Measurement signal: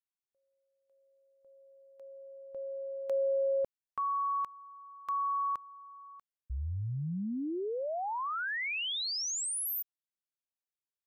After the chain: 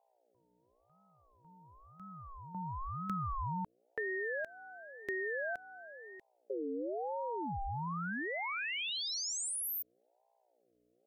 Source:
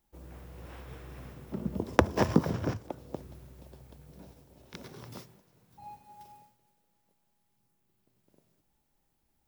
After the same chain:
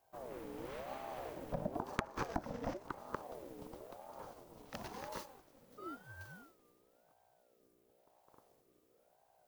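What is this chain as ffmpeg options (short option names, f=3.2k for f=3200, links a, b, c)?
-af "acompressor=threshold=-35dB:ratio=16:attack=38:release=382:knee=6:detection=rms,aeval=exprs='val(0)+0.0002*(sin(2*PI*60*n/s)+sin(2*PI*2*60*n/s)/2+sin(2*PI*3*60*n/s)/3+sin(2*PI*4*60*n/s)/4+sin(2*PI*5*60*n/s)/5)':c=same,aeval=exprs='val(0)*sin(2*PI*550*n/s+550*0.35/0.97*sin(2*PI*0.97*n/s))':c=same,volume=3dB"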